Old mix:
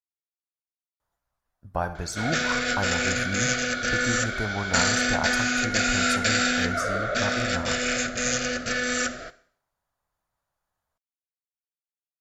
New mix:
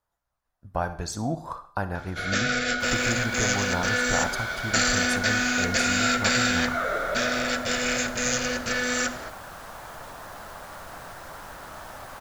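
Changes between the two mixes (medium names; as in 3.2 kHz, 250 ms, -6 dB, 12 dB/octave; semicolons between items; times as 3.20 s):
speech: entry -1.00 s; second sound: unmuted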